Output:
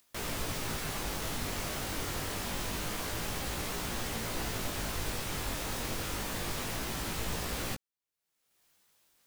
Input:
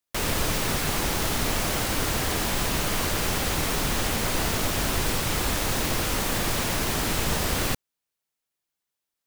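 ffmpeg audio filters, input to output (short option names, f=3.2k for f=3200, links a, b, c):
-af "flanger=delay=17:depth=4.4:speed=0.26,acompressor=mode=upward:threshold=-41dB:ratio=2.5,volume=-7dB"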